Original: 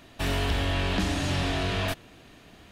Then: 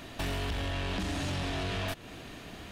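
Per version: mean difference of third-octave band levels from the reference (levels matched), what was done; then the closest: 4.5 dB: compressor 10:1, threshold -34 dBFS, peak gain reduction 12 dB; soft clip -34 dBFS, distortion -15 dB; gain +6.5 dB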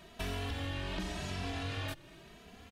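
3.5 dB: compressor 6:1, threshold -32 dBFS, peak gain reduction 9.5 dB; endless flanger 2.7 ms +0.89 Hz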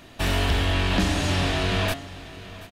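2.5 dB: de-hum 139 Hz, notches 32; on a send: echo 0.731 s -17.5 dB; on the sum: gain +4.5 dB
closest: third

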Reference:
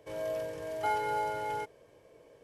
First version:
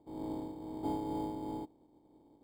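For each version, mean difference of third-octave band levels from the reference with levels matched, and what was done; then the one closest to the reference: 8.0 dB: spectral contrast lowered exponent 0.24; vocal tract filter u; in parallel at -10.5 dB: sample-and-hold 11×; on the sum: gain +9.5 dB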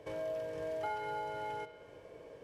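4.5 dB: high shelf 7200 Hz -11 dB; compressor 2.5:1, threshold -47 dBFS, peak gain reduction 13.5 dB; on a send: analogue delay 63 ms, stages 2048, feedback 77%, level -14 dB; on the sum: gain +5 dB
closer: second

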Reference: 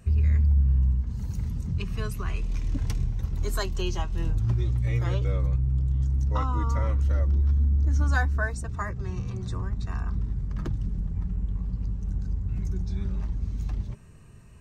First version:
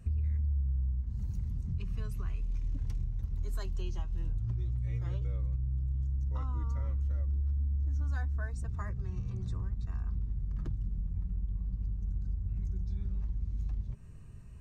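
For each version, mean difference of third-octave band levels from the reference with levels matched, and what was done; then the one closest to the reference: 4.5 dB: low shelf 160 Hz +12 dB; compressor 3:1, threshold -25 dBFS, peak gain reduction 13 dB; gain -8 dB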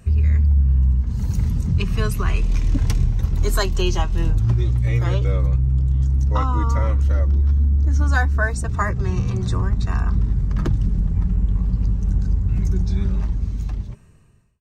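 2.0 dB: ending faded out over 1.81 s; in parallel at +2.5 dB: vocal rider within 5 dB 0.5 s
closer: second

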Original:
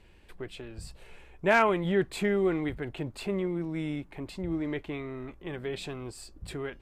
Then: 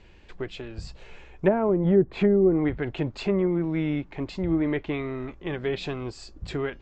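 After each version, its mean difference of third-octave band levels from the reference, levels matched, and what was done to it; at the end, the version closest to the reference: 3.0 dB: steep low-pass 7400 Hz 72 dB/oct; treble ducked by the level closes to 450 Hz, closed at -22 dBFS; in parallel at -1 dB: limiter -29.5 dBFS, peak gain reduction 11.5 dB; on the sum: upward expander 1.5:1, over -36 dBFS; gain +6.5 dB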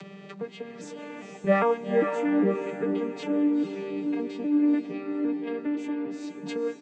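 8.5 dB: arpeggiated vocoder minor triad, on G3, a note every 0.403 s; comb 6.7 ms, depth 95%; upward compressor, threshold -28 dBFS; on a send: diffused feedback echo 0.481 s, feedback 45%, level -6 dB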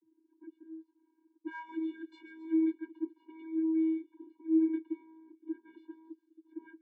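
16.0 dB: low-pass opened by the level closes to 370 Hz, open at -22 dBFS; limiter -23 dBFS, peak gain reduction 11.5 dB; vocoder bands 32, square 321 Hz; on a send: thin delay 0.136 s, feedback 70%, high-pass 4800 Hz, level -9.5 dB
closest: first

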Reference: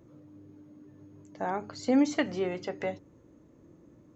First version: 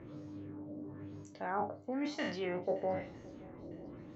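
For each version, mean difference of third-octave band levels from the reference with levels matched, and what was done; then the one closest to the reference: 8.5 dB: spectral trails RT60 0.38 s; reverse; compressor 10:1, threshold -40 dBFS, peak gain reduction 20.5 dB; reverse; LFO low-pass sine 1 Hz 600–5700 Hz; swung echo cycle 0.953 s, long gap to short 1.5:1, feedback 42%, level -23 dB; gain +5 dB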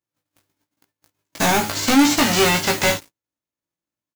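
11.5 dB: spectral whitening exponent 0.3; gate -49 dBFS, range -26 dB; sample leveller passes 5; doubler 18 ms -4 dB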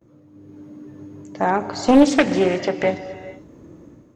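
3.0 dB: gate with hold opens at -52 dBFS; AGC gain up to 11 dB; non-linear reverb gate 0.49 s flat, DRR 11 dB; Doppler distortion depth 0.55 ms; gain +2 dB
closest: third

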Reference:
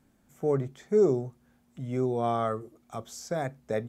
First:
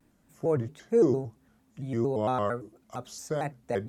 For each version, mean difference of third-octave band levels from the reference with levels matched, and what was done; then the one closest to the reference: 3.5 dB: shaped vibrato square 4.4 Hz, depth 160 cents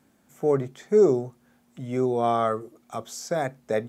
1.0 dB: HPF 210 Hz 6 dB/oct; gain +5.5 dB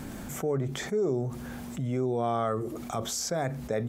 6.5 dB: fast leveller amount 70%; gain -7 dB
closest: second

